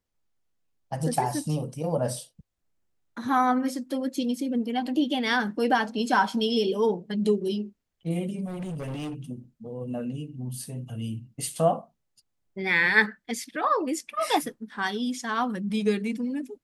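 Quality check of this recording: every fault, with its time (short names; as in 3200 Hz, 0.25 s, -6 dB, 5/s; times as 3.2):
8.46–9.15 clipped -31 dBFS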